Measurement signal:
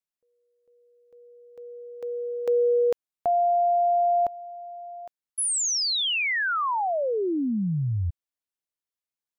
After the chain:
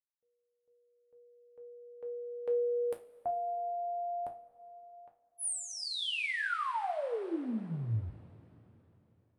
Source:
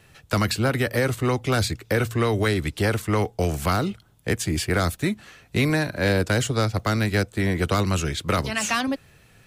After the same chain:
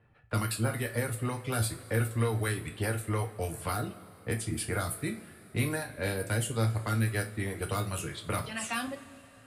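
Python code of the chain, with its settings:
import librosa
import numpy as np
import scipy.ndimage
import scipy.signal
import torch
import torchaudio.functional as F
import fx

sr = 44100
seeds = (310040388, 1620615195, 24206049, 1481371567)

y = fx.env_lowpass(x, sr, base_hz=1500.0, full_db=-18.0)
y = fx.dereverb_blind(y, sr, rt60_s=0.85)
y = fx.high_shelf_res(y, sr, hz=7900.0, db=7.5, q=3.0)
y = fx.comb_fb(y, sr, f0_hz=56.0, decay_s=0.27, harmonics='all', damping=0.0, mix_pct=60)
y = fx.rev_double_slope(y, sr, seeds[0], early_s=0.23, late_s=3.6, knee_db=-22, drr_db=3.0)
y = y * librosa.db_to_amplitude(-6.5)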